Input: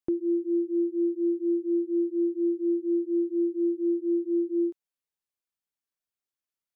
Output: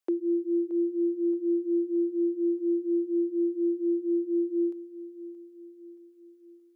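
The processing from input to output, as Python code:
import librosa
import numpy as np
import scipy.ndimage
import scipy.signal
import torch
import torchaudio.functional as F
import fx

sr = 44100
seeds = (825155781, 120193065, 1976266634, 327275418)

y = scipy.signal.sosfilt(scipy.signal.butter(4, 380.0, 'highpass', fs=sr, output='sos'), x)
y = fx.echo_feedback(y, sr, ms=625, feedback_pct=50, wet_db=-15.0)
y = y * librosa.db_to_amplitude(4.5)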